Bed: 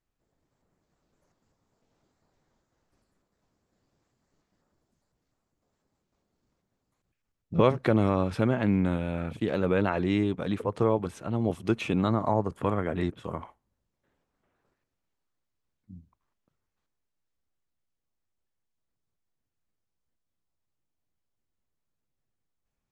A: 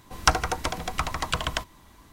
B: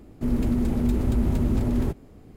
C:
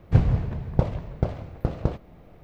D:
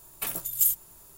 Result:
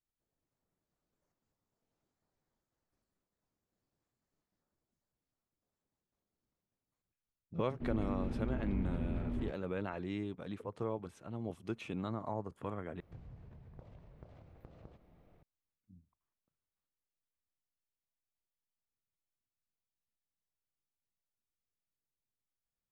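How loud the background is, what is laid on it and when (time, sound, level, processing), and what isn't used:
bed -13.5 dB
7.59 s: add B -14.5 dB + low-pass 3.3 kHz 24 dB/octave
13.00 s: replace with C -15 dB + compression 3:1, threshold -39 dBFS
not used: A, D

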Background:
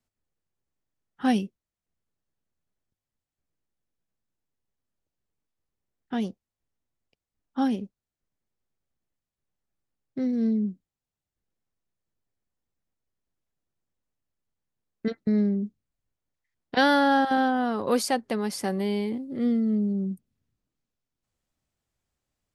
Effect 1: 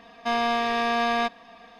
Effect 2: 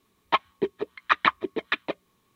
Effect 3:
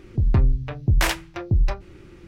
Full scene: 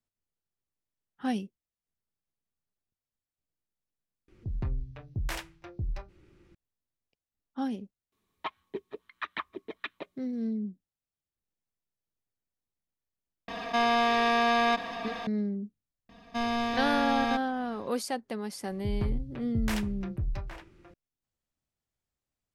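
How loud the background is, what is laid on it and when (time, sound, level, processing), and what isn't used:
background -7.5 dB
4.28 s: replace with 3 -14.5 dB
8.12 s: add 2 -11 dB + peak limiter -10.5 dBFS
13.48 s: add 1 -1 dB + level flattener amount 50%
16.09 s: add 1 -7.5 dB + tone controls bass +14 dB, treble +4 dB
18.67 s: add 3 -13 dB + echo from a far wall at 140 m, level -8 dB

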